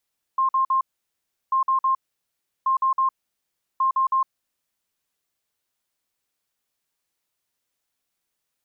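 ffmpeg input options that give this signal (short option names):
-f lavfi -i "aevalsrc='0.141*sin(2*PI*1060*t)*clip(min(mod(mod(t,1.14),0.16),0.11-mod(mod(t,1.14),0.16))/0.005,0,1)*lt(mod(t,1.14),0.48)':d=4.56:s=44100"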